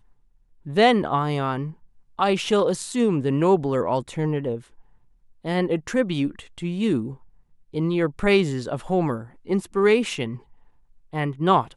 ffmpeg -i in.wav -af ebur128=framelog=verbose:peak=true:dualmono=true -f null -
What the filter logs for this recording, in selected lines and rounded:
Integrated loudness:
  I:         -20.2 LUFS
  Threshold: -31.0 LUFS
Loudness range:
  LRA:         3.9 LU
  Threshold: -41.3 LUFS
  LRA low:   -23.6 LUFS
  LRA high:  -19.7 LUFS
True peak:
  Peak:       -5.5 dBFS